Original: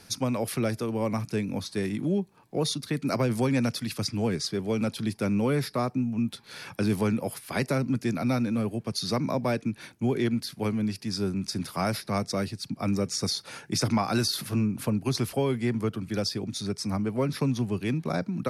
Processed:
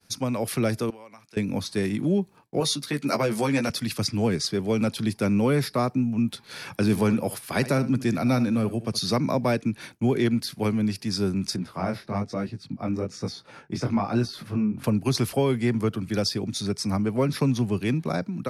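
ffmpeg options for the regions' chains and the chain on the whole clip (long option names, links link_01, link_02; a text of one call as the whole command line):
ffmpeg -i in.wav -filter_complex "[0:a]asettb=1/sr,asplit=3[link_01][link_02][link_03];[link_01]atrim=end=0.904[link_04];[link_02]atrim=start=0.9:end=1.37,asetpts=PTS-STARTPTS,afade=type=in:duration=0.004:curve=qsin,afade=type=out:start_time=0.466:duration=0.004:curve=qsin,highpass=frequency=1400:poles=1,highshelf=frequency=7000:gain=-9,acompressor=threshold=-46dB:ratio=5:attack=3.2:release=140:knee=1:detection=peak[link_05];[link_03]atrim=start=1.366[link_06];[link_04][link_05]acrossfade=duration=0.004:curve1=hsin:curve2=qsin[link_07];[link_07][link_06]acrossfade=duration=0.004:curve1=qsin:curve2=hsin,asettb=1/sr,asplit=3[link_08][link_09][link_10];[link_08]atrim=end=2.604[link_11];[link_09]atrim=start=2.6:end=3.7,asetpts=PTS-STARTPTS,afade=type=in:duration=0.004:curve=qsin,afade=type=out:start_time=1.096:duration=0.004:curve=qsin,highpass=frequency=310:poles=1,asplit=2[link_12][link_13];[link_13]adelay=14,volume=-5dB[link_14];[link_12][link_14]amix=inputs=2:normalize=0,atrim=end_sample=48510[link_15];[link_10]atrim=start=3.696[link_16];[link_11][link_15]acrossfade=duration=0.004:curve1=hsin:curve2=qsin[link_17];[link_17][link_16]acrossfade=duration=0.004:curve1=qsin:curve2=hsin,asettb=1/sr,asplit=3[link_18][link_19][link_20];[link_18]atrim=end=6.814[link_21];[link_19]atrim=start=6.81:end=9.13,asetpts=PTS-STARTPTS,afade=type=in:duration=0.004:curve=qsin,afade=type=out:start_time=2.316:duration=0.004:curve=qsin,bandreject=frequency=2100:width=28,aecho=1:1:71:0.168,atrim=end_sample=102312[link_22];[link_20]atrim=start=9.126[link_23];[link_21][link_22]acrossfade=duration=0.004:curve1=hsin:curve2=qsin[link_24];[link_24][link_23]acrossfade=duration=0.004:curve1=qsin:curve2=hsin,asettb=1/sr,asplit=3[link_25][link_26][link_27];[link_25]atrim=end=11.564[link_28];[link_26]atrim=start=11.56:end=14.84,asetpts=PTS-STARTPTS,afade=type=in:duration=0.004:curve=qsin,afade=type=out:start_time=3.276:duration=0.004:curve=qsin,lowpass=frequency=1500:poles=1,flanger=delay=16:depth=7.4:speed=1.1[link_29];[link_27]atrim=start=14.836[link_30];[link_28][link_29]acrossfade=duration=0.004:curve1=hsin:curve2=qsin[link_31];[link_31][link_30]acrossfade=duration=0.004:curve1=qsin:curve2=hsin,agate=range=-33dB:threshold=-46dB:ratio=3:detection=peak,dynaudnorm=framelen=100:gausssize=9:maxgain=3.5dB" out.wav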